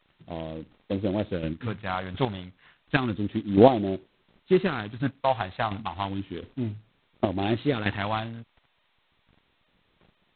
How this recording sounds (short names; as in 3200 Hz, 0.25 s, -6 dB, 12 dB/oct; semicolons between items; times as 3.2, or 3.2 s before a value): phasing stages 2, 0.32 Hz, lowest notch 300–1600 Hz; a quantiser's noise floor 12-bit, dither none; chopped level 1.4 Hz, depth 60%, duty 15%; G.726